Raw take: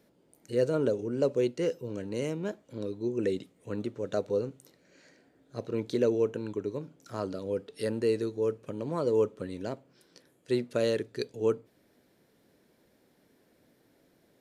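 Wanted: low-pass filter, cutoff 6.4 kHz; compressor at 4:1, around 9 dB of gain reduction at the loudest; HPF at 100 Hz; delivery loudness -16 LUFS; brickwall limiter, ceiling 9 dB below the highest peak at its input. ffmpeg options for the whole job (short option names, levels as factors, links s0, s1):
-af "highpass=100,lowpass=6400,acompressor=threshold=0.0251:ratio=4,volume=16.8,alimiter=limit=0.562:level=0:latency=1"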